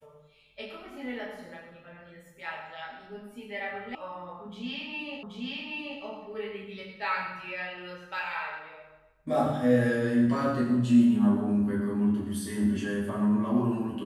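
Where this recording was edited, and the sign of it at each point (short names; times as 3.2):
3.95 sound cut off
5.23 repeat of the last 0.78 s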